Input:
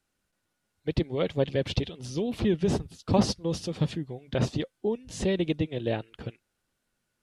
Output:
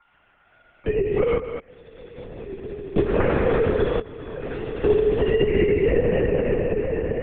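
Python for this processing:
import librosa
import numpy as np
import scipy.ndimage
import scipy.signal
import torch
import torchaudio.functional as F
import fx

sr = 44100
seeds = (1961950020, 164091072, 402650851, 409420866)

y = fx.sine_speech(x, sr)
y = fx.notch(y, sr, hz=950.0, q=6.5)
y = y + 0.86 * np.pad(y, (int(5.0 * sr / 1000.0), 0))[:len(y)]
y = fx.chopper(y, sr, hz=7.5, depth_pct=65, duty_pct=25)
y = fx.rev_plate(y, sr, seeds[0], rt60_s=4.7, hf_ratio=0.75, predelay_ms=0, drr_db=-8.5)
y = fx.gate_flip(y, sr, shuts_db=-23.0, range_db=-34, at=(1.38, 2.98))
y = y + 10.0 ** (-13.0 / 20.0) * np.pad(y, (int(210 * sr / 1000.0), 0))[:len(y)]
y = fx.level_steps(y, sr, step_db=23, at=(3.99, 4.89), fade=0.02)
y = fx.lpc_vocoder(y, sr, seeds[1], excitation='whisper', order=10)
y = fx.band_squash(y, sr, depth_pct=70)
y = y * librosa.db_to_amplitude(4.0)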